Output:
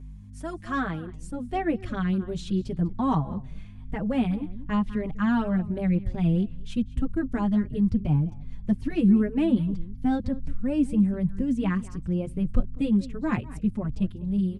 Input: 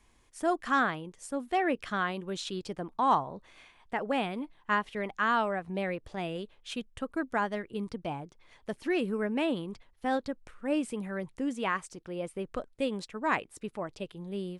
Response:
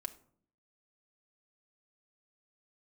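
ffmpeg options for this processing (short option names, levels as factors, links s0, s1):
-filter_complex "[0:a]asubboost=boost=7:cutoff=150,acrossover=split=410|1400[s0][s1][s2];[s0]dynaudnorm=f=550:g=3:m=4.73[s3];[s3][s1][s2]amix=inputs=3:normalize=0,asplit=2[s4][s5];[s5]adelay=198.3,volume=0.126,highshelf=f=4000:g=-4.46[s6];[s4][s6]amix=inputs=2:normalize=0,aeval=exprs='val(0)+0.0158*(sin(2*PI*50*n/s)+sin(2*PI*2*50*n/s)/2+sin(2*PI*3*50*n/s)/3+sin(2*PI*4*50*n/s)/4+sin(2*PI*5*50*n/s)/5)':c=same,asplit=2[s7][s8];[s8]adelay=4.9,afreqshift=2.6[s9];[s7][s9]amix=inputs=2:normalize=1,volume=0.841"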